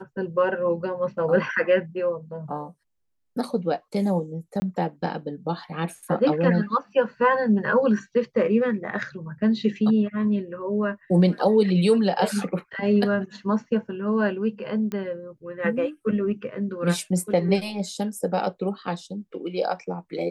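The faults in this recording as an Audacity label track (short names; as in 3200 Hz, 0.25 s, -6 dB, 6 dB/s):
4.600000	4.620000	gap 20 ms
14.920000	14.920000	pop -19 dBFS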